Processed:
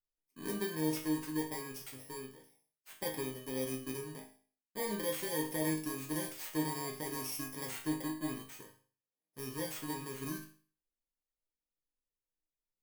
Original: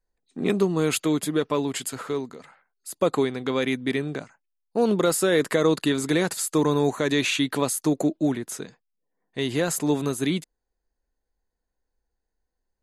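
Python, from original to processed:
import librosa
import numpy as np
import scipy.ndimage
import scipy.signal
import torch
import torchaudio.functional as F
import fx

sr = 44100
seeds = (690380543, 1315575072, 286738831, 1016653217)

y = fx.bit_reversed(x, sr, seeds[0], block=32)
y = fx.cheby_harmonics(y, sr, harmonics=(2, 8), levels_db=(-18, -27), full_scale_db=-8.5)
y = fx.resonator_bank(y, sr, root=44, chord='major', decay_s=0.43)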